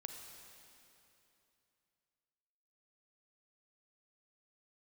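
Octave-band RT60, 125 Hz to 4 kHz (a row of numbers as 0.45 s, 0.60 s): 3.3 s, 3.1 s, 3.0 s, 2.9 s, 2.8 s, 2.7 s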